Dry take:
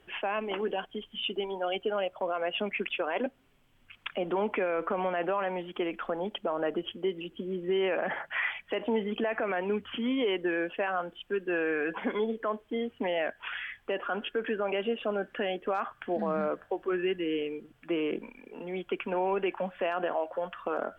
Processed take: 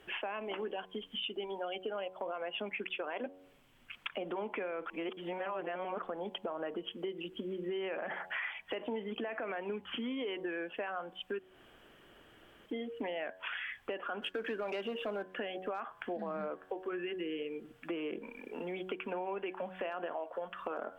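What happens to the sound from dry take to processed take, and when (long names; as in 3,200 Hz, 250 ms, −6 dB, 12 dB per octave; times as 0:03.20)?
0:04.86–0:06.03: reverse
0:11.39–0:12.66: fill with room tone
0:14.22–0:15.23: leveller curve on the samples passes 1
whole clip: low-shelf EQ 140 Hz −7 dB; hum removal 93.24 Hz, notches 12; downward compressor 4 to 1, threshold −41 dBFS; level +3.5 dB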